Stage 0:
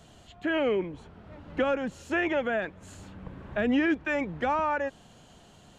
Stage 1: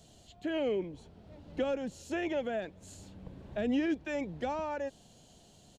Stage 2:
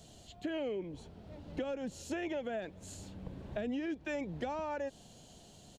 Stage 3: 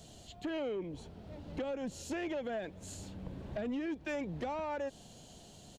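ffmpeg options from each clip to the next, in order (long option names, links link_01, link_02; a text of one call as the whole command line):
ffmpeg -i in.wav -af "firequalizer=gain_entry='entry(650,0);entry(1200,-10);entry(4200,5)':delay=0.05:min_phase=1,volume=-5dB" out.wav
ffmpeg -i in.wav -af "acompressor=threshold=-37dB:ratio=6,volume=2.5dB" out.wav
ffmpeg -i in.wav -af "asoftclip=type=tanh:threshold=-32.5dB,volume=2dB" out.wav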